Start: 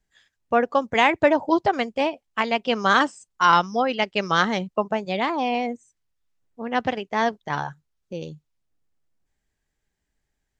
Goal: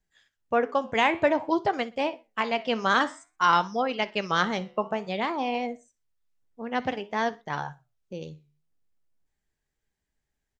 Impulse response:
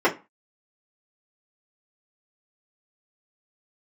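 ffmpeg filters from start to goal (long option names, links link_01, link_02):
-filter_complex "[0:a]flanger=delay=5.2:depth=8.8:regen=83:speed=0.53:shape=triangular,aecho=1:1:61|122:0.0891|0.0276,asplit=2[link_01][link_02];[1:a]atrim=start_sample=2205[link_03];[link_02][link_03]afir=irnorm=-1:irlink=0,volume=-40.5dB[link_04];[link_01][link_04]amix=inputs=2:normalize=0"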